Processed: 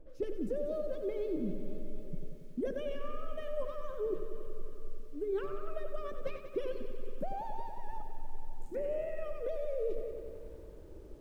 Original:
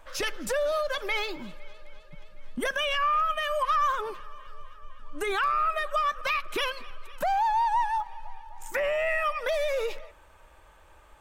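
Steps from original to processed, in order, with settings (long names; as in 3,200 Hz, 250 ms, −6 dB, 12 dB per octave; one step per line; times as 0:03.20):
drawn EQ curve 100 Hz 0 dB, 390 Hz +9 dB, 970 Hz −26 dB
reversed playback
downward compressor 10 to 1, threshold −39 dBFS, peak gain reduction 19 dB
reversed playback
feedback echo at a low word length 93 ms, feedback 80%, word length 12 bits, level −10 dB
level +6.5 dB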